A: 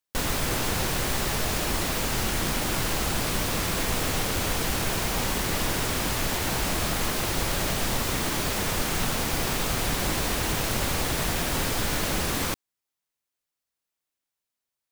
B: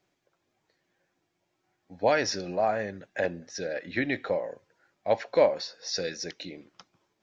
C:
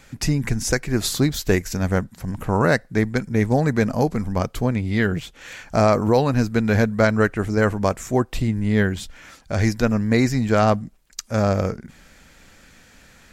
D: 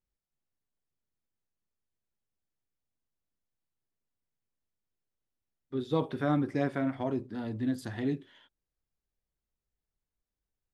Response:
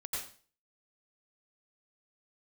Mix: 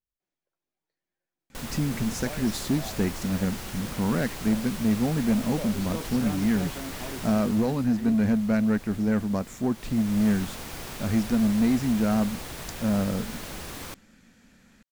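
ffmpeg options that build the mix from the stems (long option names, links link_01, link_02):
-filter_complex "[0:a]adelay=1400,volume=-0.5dB,afade=type=out:start_time=7.21:duration=0.67:silence=0.298538,afade=type=in:start_time=9.74:duration=0.52:silence=0.316228[link_01];[1:a]highpass=frequency=130:width=0.5412,highpass=frequency=130:width=1.3066,adelay=200,volume=-17dB[link_02];[2:a]equalizer=frequency=220:width=1.7:gain=13,acontrast=33,adelay=1500,volume=-16dB[link_03];[3:a]volume=-7.5dB[link_04];[link_01][link_02][link_03][link_04]amix=inputs=4:normalize=0"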